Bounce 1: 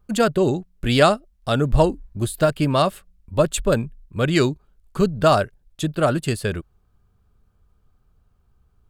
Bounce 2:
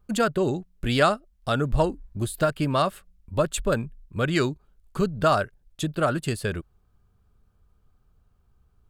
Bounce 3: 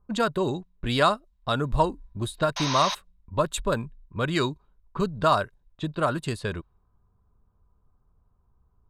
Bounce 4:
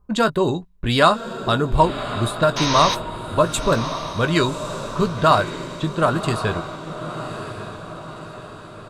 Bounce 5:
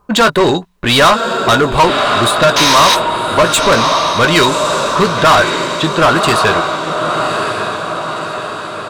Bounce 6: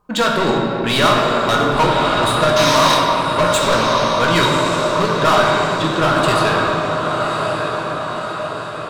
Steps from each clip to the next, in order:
dynamic bell 1.4 kHz, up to +5 dB, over -32 dBFS, Q 1.5; in parallel at +1 dB: compression, threshold -23 dBFS, peak gain reduction 14.5 dB; on the sum: trim -8.5 dB
painted sound noise, 2.56–2.95 s, 520–6600 Hz -30 dBFS; small resonant body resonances 1/3.8 kHz, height 12 dB, ringing for 25 ms; level-controlled noise filter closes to 1.1 kHz, open at -21 dBFS; trim -2.5 dB
doubling 18 ms -10.5 dB; echo that smears into a reverb 1110 ms, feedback 51%, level -10 dB; trim +6 dB
overdrive pedal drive 25 dB, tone 7.7 kHz, clips at -1 dBFS
simulated room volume 180 m³, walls hard, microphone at 0.57 m; trim -8.5 dB

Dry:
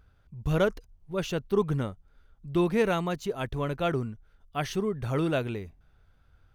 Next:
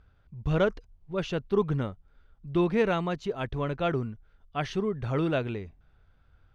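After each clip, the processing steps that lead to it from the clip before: low-pass 4.4 kHz 12 dB/octave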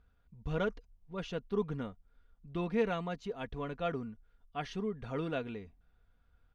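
comb 4.2 ms, depth 48%; trim -8.5 dB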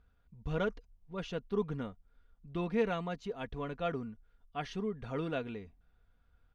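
no audible change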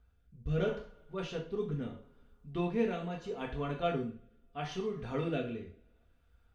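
two-slope reverb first 0.41 s, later 1.8 s, from -28 dB, DRR -1 dB; rotary cabinet horn 0.75 Hz

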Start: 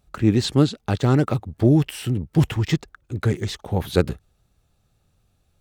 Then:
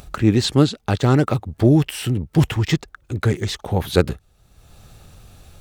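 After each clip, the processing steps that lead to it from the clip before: peaking EQ 190 Hz -2.5 dB 2.6 oct; in parallel at -1 dB: upward compressor, threshold -23 dBFS; on the sum: trim -1.5 dB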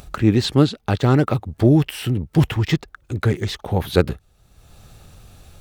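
dynamic bell 7.4 kHz, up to -6 dB, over -46 dBFS, Q 1.2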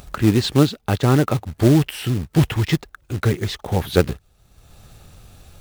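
short-mantissa float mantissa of 2-bit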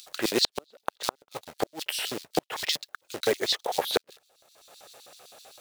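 LFO high-pass square 7.8 Hz 570–4100 Hz; inverted gate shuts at -9 dBFS, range -41 dB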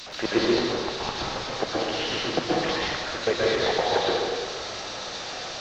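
one-bit delta coder 32 kbps, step -33.5 dBFS; plate-style reverb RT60 1.7 s, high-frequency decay 0.6×, pre-delay 110 ms, DRR -5.5 dB

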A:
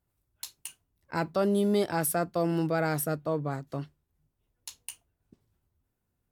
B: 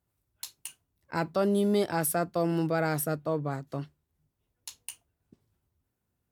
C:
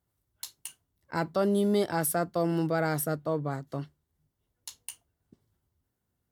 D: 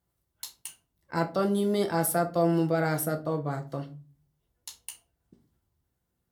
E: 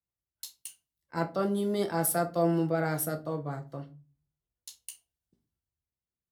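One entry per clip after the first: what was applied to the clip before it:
high-pass 52 Hz
band-stop 2.5 kHz, Q 8.8
simulated room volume 180 m³, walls furnished, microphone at 0.8 m
three bands expanded up and down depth 40%; trim -3 dB

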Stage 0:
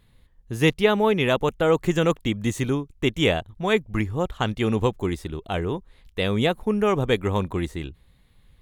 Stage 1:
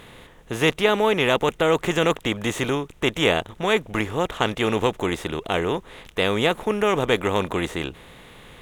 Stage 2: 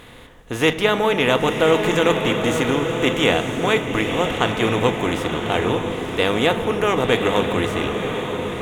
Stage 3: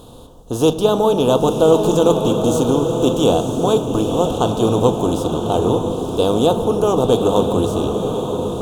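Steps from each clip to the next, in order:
spectral levelling over time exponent 0.6; bass shelf 270 Hz -8.5 dB
echo that smears into a reverb 980 ms, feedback 41%, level -6 dB; on a send at -8.5 dB: reverberation RT60 3.5 s, pre-delay 3 ms; on the sum: trim +1.5 dB
Butterworth band-stop 2 kHz, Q 0.65; trim +4.5 dB

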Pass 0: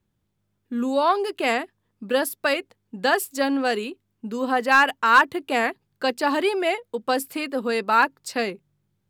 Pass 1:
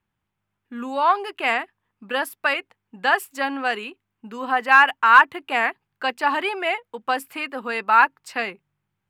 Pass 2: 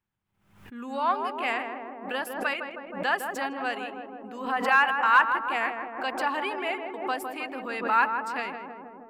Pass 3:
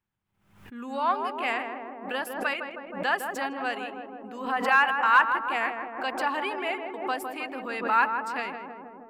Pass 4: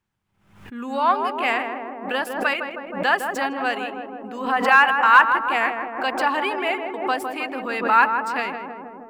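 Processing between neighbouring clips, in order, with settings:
high-order bell 1.5 kHz +10.5 dB 2.3 oct; trim -7 dB
filtered feedback delay 158 ms, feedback 84%, low-pass 1.1 kHz, level -4.5 dB; swell ahead of each attack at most 90 dB/s; trim -7.5 dB
no audible change
median filter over 3 samples; trim +6.5 dB

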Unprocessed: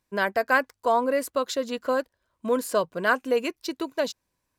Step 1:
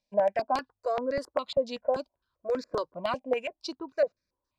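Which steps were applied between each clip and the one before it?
small resonant body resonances 590/2400 Hz, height 9 dB, ringing for 35 ms; LFO low-pass square 3.6 Hz 770–4800 Hz; stepped phaser 5.1 Hz 360–3000 Hz; trim -6 dB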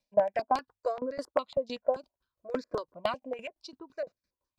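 sawtooth tremolo in dB decaying 5.9 Hz, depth 20 dB; trim +3.5 dB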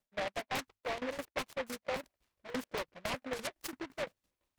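dynamic bell 430 Hz, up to -4 dB, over -41 dBFS, Q 0.73; reverse; compression 12:1, threshold -39 dBFS, peak gain reduction 18.5 dB; reverse; delay time shaken by noise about 1.3 kHz, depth 0.18 ms; trim +5 dB

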